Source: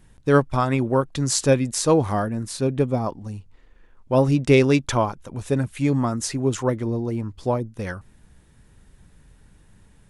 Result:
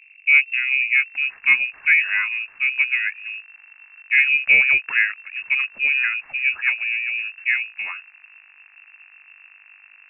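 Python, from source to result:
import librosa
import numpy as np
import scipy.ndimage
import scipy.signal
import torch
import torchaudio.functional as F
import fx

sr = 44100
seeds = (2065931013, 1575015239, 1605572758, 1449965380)

y = fx.dmg_buzz(x, sr, base_hz=50.0, harmonics=40, level_db=-55.0, tilt_db=-3, odd_only=False)
y = fx.filter_sweep_lowpass(y, sr, from_hz=490.0, to_hz=1100.0, start_s=0.64, end_s=1.48, q=1.4)
y = fx.freq_invert(y, sr, carrier_hz=2700)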